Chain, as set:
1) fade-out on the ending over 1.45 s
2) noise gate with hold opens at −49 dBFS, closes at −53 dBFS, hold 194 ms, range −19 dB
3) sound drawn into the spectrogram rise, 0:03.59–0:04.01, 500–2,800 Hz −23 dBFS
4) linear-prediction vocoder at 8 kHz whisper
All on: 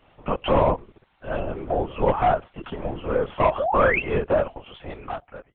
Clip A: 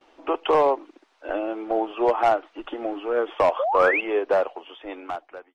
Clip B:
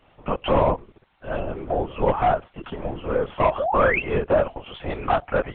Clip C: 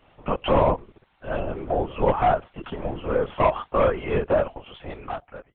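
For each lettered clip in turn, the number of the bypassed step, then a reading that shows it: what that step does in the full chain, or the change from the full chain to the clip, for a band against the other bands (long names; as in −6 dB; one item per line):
4, change in crest factor −2.5 dB
1, change in momentary loudness spread −3 LU
3, 2 kHz band −5.5 dB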